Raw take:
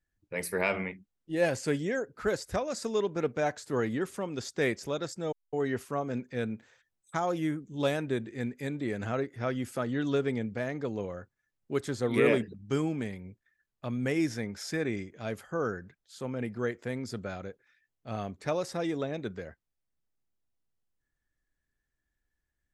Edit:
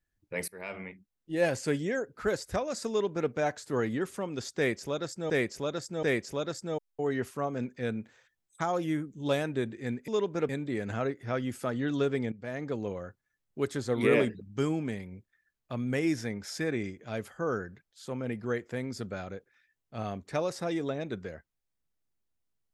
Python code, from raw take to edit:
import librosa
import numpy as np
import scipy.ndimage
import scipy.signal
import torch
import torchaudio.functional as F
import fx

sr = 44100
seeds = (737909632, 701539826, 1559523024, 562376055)

y = fx.edit(x, sr, fx.fade_in_from(start_s=0.48, length_s=0.91, floor_db=-22.0),
    fx.duplicate(start_s=2.89, length_s=0.41, to_s=8.62),
    fx.repeat(start_s=4.57, length_s=0.73, count=3),
    fx.fade_in_from(start_s=10.45, length_s=0.32, floor_db=-15.5), tone=tone)